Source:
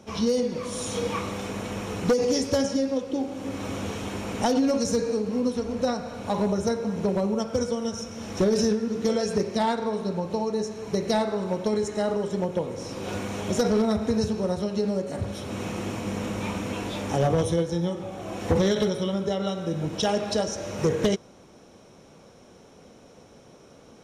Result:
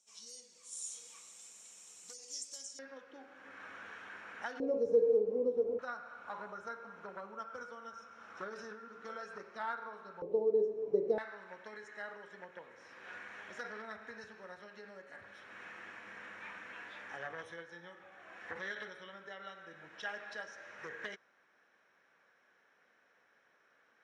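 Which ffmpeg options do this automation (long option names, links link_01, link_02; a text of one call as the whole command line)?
ffmpeg -i in.wav -af "asetnsamples=nb_out_samples=441:pad=0,asendcmd='2.79 bandpass f 1600;4.6 bandpass f 460;5.79 bandpass f 1400;10.22 bandpass f 430;11.18 bandpass f 1700',bandpass=frequency=7700:width_type=q:width=5.7:csg=0" out.wav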